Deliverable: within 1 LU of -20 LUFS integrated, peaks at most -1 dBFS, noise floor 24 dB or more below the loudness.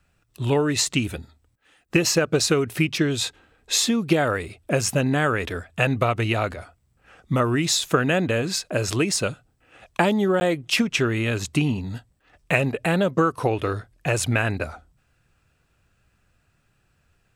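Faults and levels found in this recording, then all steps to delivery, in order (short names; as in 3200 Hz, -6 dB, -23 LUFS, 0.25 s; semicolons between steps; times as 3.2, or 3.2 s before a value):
dropouts 1; longest dropout 10 ms; loudness -23.0 LUFS; peak -4.5 dBFS; loudness target -20.0 LUFS
-> interpolate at 10.4, 10 ms; gain +3 dB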